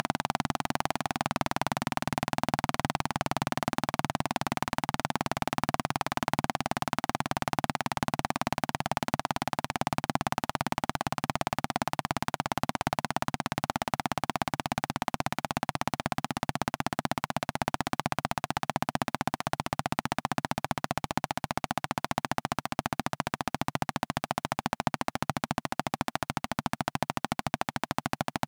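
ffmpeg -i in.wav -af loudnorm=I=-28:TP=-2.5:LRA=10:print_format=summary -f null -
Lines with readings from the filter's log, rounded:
Input Integrated:    -32.3 LUFS
Input True Peak:      -7.5 dBTP
Input LRA:             1.5 LU
Input Threshold:     -42.3 LUFS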